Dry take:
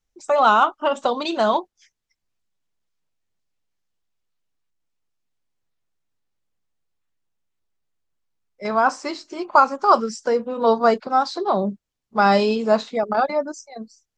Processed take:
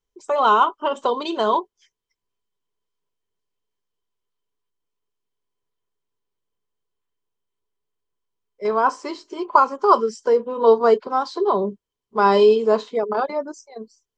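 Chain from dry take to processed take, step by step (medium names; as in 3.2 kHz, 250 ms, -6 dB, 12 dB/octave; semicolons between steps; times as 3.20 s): small resonant body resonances 420/1000/3100 Hz, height 14 dB, ringing for 40 ms; trim -5 dB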